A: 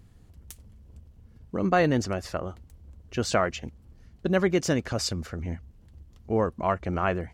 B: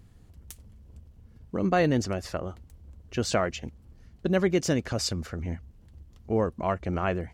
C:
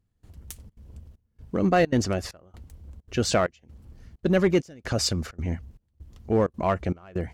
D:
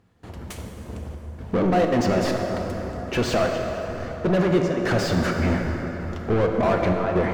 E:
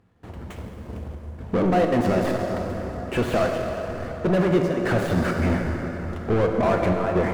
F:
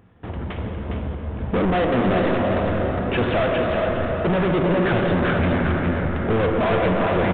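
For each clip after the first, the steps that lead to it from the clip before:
dynamic EQ 1200 Hz, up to -4 dB, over -36 dBFS, Q 0.94
in parallel at -4 dB: hard clip -22 dBFS, distortion -10 dB; on the sum: step gate "...xxxxxx.xxxxx" 195 bpm -24 dB
compressor, threshold -24 dBFS, peak gain reduction 8.5 dB; overdrive pedal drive 32 dB, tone 1100 Hz, clips at -13.5 dBFS; plate-style reverb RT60 4.7 s, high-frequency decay 0.5×, DRR 1.5 dB
median filter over 9 samples
soft clip -26.5 dBFS, distortion -7 dB; echo 0.409 s -5 dB; downsampling 8000 Hz; gain +8.5 dB

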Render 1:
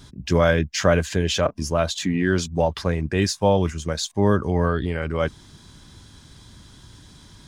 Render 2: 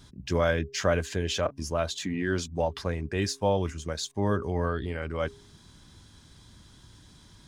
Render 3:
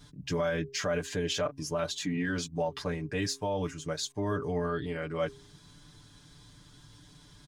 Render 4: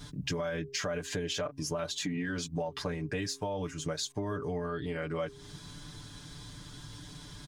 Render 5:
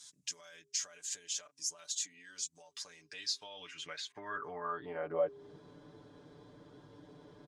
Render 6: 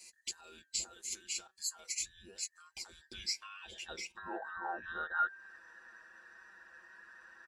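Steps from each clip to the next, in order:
de-hum 135.7 Hz, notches 3; dynamic EQ 170 Hz, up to -4 dB, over -34 dBFS, Q 2.3; gain -6.5 dB
comb 6.8 ms, depth 89%; limiter -18 dBFS, peak gain reduction 8 dB; gain -3.5 dB
compressor 6:1, threshold -40 dBFS, peak gain reduction 13 dB; gain +8 dB
band-pass sweep 7200 Hz -> 480 Hz, 2.79–5.47; gain +5.5 dB
band inversion scrambler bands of 2000 Hz; flange 0.37 Hz, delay 1 ms, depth 4.9 ms, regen +86%; gain +4 dB

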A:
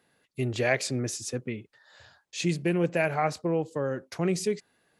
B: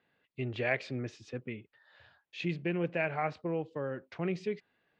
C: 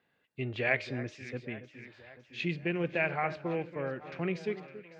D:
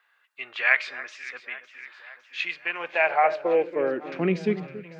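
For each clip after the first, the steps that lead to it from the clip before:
ladder low-pass 3700 Hz, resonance 30%
de-hum 306.9 Hz, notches 39; dynamic EQ 2300 Hz, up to +4 dB, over -46 dBFS, Q 0.8; echo with dull and thin repeats by turns 0.279 s, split 1800 Hz, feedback 76%, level -13.5 dB
high-pass sweep 1200 Hz -> 150 Hz, 2.6–4.72; gain +6.5 dB

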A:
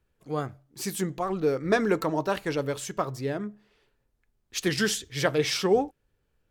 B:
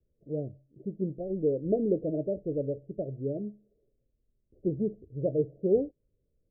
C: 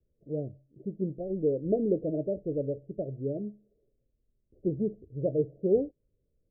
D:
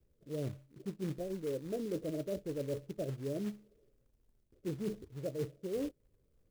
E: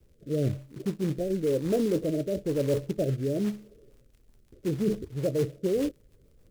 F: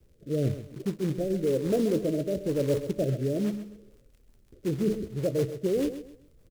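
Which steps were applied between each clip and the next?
steep low-pass 640 Hz 96 dB/oct; gain -2 dB
nothing audible
reverse; compressor 10:1, threshold -38 dBFS, peak gain reduction 19 dB; reverse; short-mantissa float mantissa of 2-bit; gain +3.5 dB
in parallel at +0.5 dB: limiter -34.5 dBFS, peak gain reduction 8 dB; on the sum: crackle 34/s -56 dBFS; rotary speaker horn 1 Hz, later 6.7 Hz, at 3.42; gain +8 dB
feedback echo 0.13 s, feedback 29%, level -11.5 dB

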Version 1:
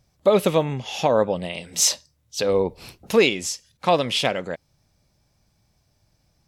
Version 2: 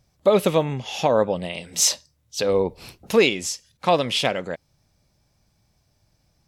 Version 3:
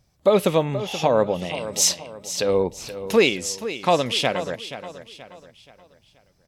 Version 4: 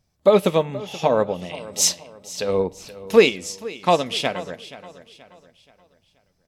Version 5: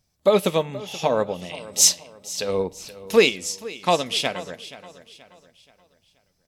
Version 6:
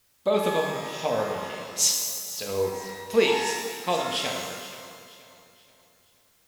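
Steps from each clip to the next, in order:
nothing audible
feedback echo 0.478 s, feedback 40%, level -12.5 dB
on a send at -12.5 dB: reverb RT60 0.80 s, pre-delay 5 ms; on the sum: upward expander 1.5:1, over -28 dBFS; gain +3.5 dB
high shelf 2900 Hz +7.5 dB; gain -3 dB
requantised 10-bit, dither triangular; shimmer reverb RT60 1.5 s, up +12 st, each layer -8 dB, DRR 0.5 dB; gain -7.5 dB

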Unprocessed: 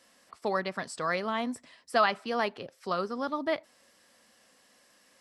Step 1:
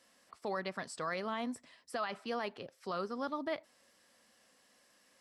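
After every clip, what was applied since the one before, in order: limiter -22 dBFS, peak gain reduction 10.5 dB; gain -5 dB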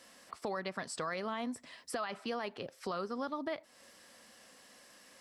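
compressor 2.5:1, threshold -48 dBFS, peak gain reduction 11 dB; gain +9 dB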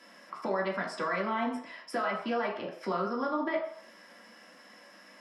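reverb RT60 0.60 s, pre-delay 3 ms, DRR -3.5 dB; gain -5.5 dB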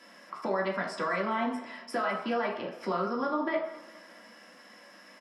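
feedback echo 0.206 s, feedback 51%, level -19 dB; gain +1 dB

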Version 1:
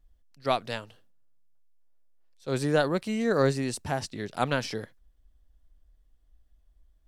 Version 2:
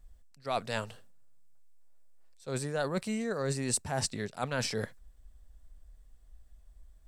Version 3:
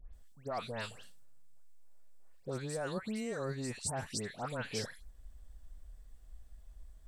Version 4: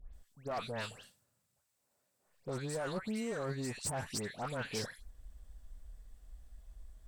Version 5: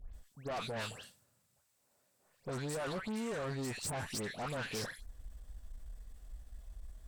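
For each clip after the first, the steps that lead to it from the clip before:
reverse; compressor 10:1, threshold -35 dBFS, peak gain reduction 17 dB; reverse; thirty-one-band EQ 315 Hz -8 dB, 3150 Hz -4 dB, 8000 Hz +8 dB; gain +6.5 dB
compressor 2.5:1, threshold -41 dBFS, peak gain reduction 11 dB; dispersion highs, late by 0.138 s, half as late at 2000 Hz; gain +2.5 dB
one-sided clip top -36.5 dBFS; gain +1 dB
tube stage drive 41 dB, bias 0.35; gain +5.5 dB

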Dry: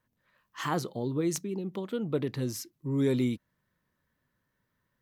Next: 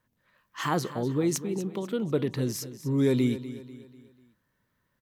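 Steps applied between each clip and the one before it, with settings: feedback echo 0.246 s, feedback 43%, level -14 dB; gain +3 dB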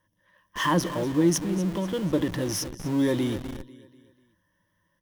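ripple EQ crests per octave 1.2, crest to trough 13 dB; in parallel at -8.5 dB: Schmitt trigger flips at -37.5 dBFS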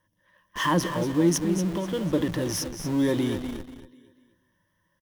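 echo 0.234 s -10.5 dB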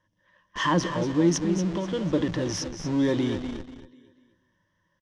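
LPF 6800 Hz 24 dB/oct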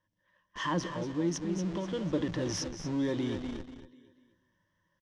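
vocal rider 0.5 s; gain -7 dB

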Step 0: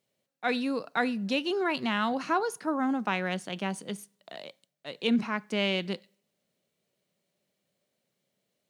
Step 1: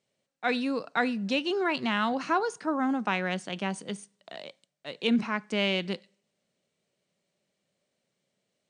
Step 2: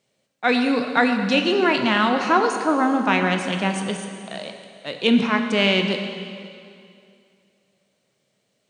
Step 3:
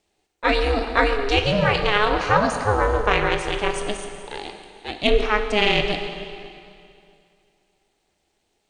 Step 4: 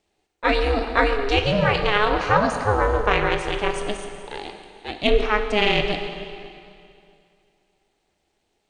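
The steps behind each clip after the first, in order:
Chebyshev low-pass 9300 Hz, order 8; gain +1.5 dB
plate-style reverb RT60 2.4 s, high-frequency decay 0.95×, DRR 4.5 dB; gain +8 dB
added harmonics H 4 -31 dB, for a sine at -3 dBFS; ring modulator 210 Hz; gain +2.5 dB
high shelf 4800 Hz -5 dB

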